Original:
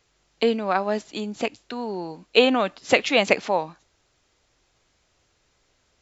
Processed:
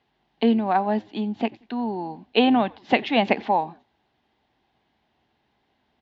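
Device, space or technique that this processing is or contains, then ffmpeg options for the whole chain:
frequency-shifting delay pedal into a guitar cabinet: -filter_complex "[0:a]asplit=3[link_01][link_02][link_03];[link_02]adelay=89,afreqshift=-110,volume=-24dB[link_04];[link_03]adelay=178,afreqshift=-220,volume=-33.1dB[link_05];[link_01][link_04][link_05]amix=inputs=3:normalize=0,highpass=85,equalizer=frequency=100:width_type=q:width=4:gain=-7,equalizer=frequency=230:width_type=q:width=4:gain=8,equalizer=frequency=520:width_type=q:width=4:gain=-8,equalizer=frequency=810:width_type=q:width=4:gain=8,equalizer=frequency=1300:width_type=q:width=4:gain=-9,equalizer=frequency=2400:width_type=q:width=4:gain=-6,lowpass=frequency=3400:width=0.5412,lowpass=frequency=3400:width=1.3066"

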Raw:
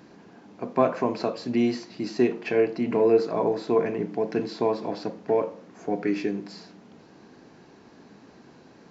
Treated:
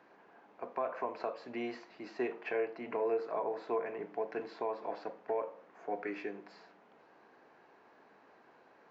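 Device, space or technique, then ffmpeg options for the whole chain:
DJ mixer with the lows and highs turned down: -filter_complex "[0:a]acrossover=split=470 2600:gain=0.1 1 0.126[link_01][link_02][link_03];[link_01][link_02][link_03]amix=inputs=3:normalize=0,alimiter=limit=-20dB:level=0:latency=1:release=237,volume=-4dB"

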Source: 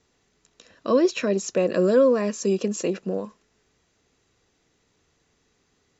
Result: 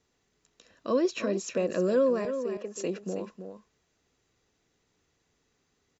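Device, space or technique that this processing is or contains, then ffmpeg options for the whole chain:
ducked delay: -filter_complex "[0:a]asettb=1/sr,asplit=3[link_01][link_02][link_03];[link_01]atrim=end=2.254[link_04];[link_02]atrim=start=2.25:end=2.76,asetpts=PTS-STARTPTS,afade=type=in:duration=0.004:curve=qsin,afade=type=out:start_time=0.506:duration=0.004:curve=qsin,acrossover=split=380 2200:gain=0.141 1 0.141[link_05][link_06][link_07];[link_05][link_06][link_07]amix=inputs=3:normalize=0[link_08];[link_03]atrim=start=2.756[link_09];[link_04][link_08]acrossfade=duration=0.004:curve1=hsin:curve2=qsin[link_10];[link_10][link_09]acrossfade=duration=0.004:curve1=qsin:curve2=hsin,asplit=3[link_11][link_12][link_13];[link_12]adelay=320,volume=-8.5dB[link_14];[link_13]apad=whole_len=278406[link_15];[link_14][link_15]sidechaincompress=threshold=-21dB:ratio=8:attack=16:release=284[link_16];[link_11][link_16]amix=inputs=2:normalize=0,volume=-6.5dB"

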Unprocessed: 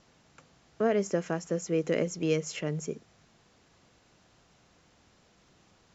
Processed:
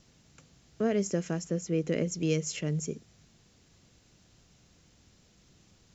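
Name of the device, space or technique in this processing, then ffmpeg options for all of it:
smiley-face EQ: -filter_complex "[0:a]lowshelf=frequency=190:gain=6.5,equalizer=frequency=960:width_type=o:width=2.1:gain=-7.5,highshelf=frequency=5500:gain=7,asettb=1/sr,asplit=3[link_01][link_02][link_03];[link_01]atrim=end=1.474[link_04];[link_02]atrim=start=1.47:end=2.12,asetpts=PTS-STARTPTS,afade=type=in:duration=0.004:curve=qsin,afade=type=out:start_time=0.646:duration=0.004:curve=qsin,highshelf=frequency=6800:gain=-11.5[link_05];[link_03]atrim=start=2.116[link_06];[link_04][link_05]acrossfade=duration=0.004:curve1=hsin:curve2=qsin[link_07];[link_07][link_06]acrossfade=duration=0.004:curve1=qsin:curve2=hsin"

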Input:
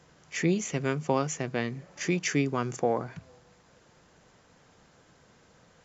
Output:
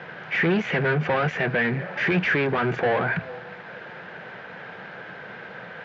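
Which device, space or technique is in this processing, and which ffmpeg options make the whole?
overdrive pedal into a guitar cabinet: -filter_complex "[0:a]asplit=2[link_01][link_02];[link_02]highpass=frequency=720:poles=1,volume=34dB,asoftclip=type=tanh:threshold=-11dB[link_03];[link_01][link_03]amix=inputs=2:normalize=0,lowpass=frequency=1500:poles=1,volume=-6dB,highpass=89,equalizer=frequency=120:width_type=q:width=4:gain=4,equalizer=frequency=180:width_type=q:width=4:gain=5,equalizer=frequency=280:width_type=q:width=4:gain=-6,equalizer=frequency=1100:width_type=q:width=4:gain=-6,equalizer=frequency=1600:width_type=q:width=4:gain=8,equalizer=frequency=2300:width_type=q:width=4:gain=3,lowpass=frequency=3600:width=0.5412,lowpass=frequency=3600:width=1.3066,volume=-2.5dB"

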